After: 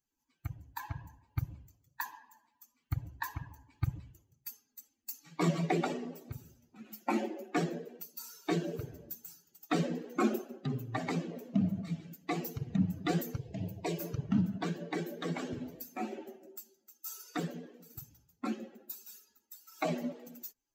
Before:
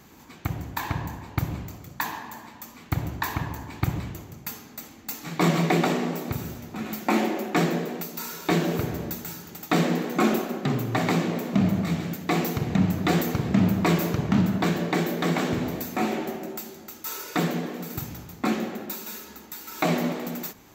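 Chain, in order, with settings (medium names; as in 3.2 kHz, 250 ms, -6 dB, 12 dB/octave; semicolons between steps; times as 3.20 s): expander on every frequency bin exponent 2; 13.38–14.00 s: static phaser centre 540 Hz, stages 4; dynamic bell 2.9 kHz, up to -3 dB, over -48 dBFS, Q 0.9; trim -4 dB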